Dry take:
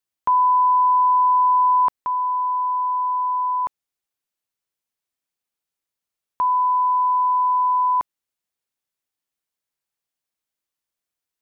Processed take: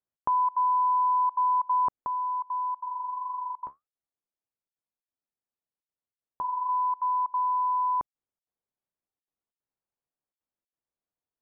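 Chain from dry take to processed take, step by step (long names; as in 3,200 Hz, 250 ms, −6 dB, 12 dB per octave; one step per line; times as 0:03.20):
low-pass filter 1,000 Hz 12 dB per octave
dynamic equaliser 790 Hz, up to −4 dB, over −31 dBFS, Q 0.85
0:02.80–0:06.69: flanger 1.7 Hz, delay 8.1 ms, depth 6.9 ms, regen −56%
gate pattern "xx.xxx.xxxxxxx" 186 BPM −24 dB
level −1 dB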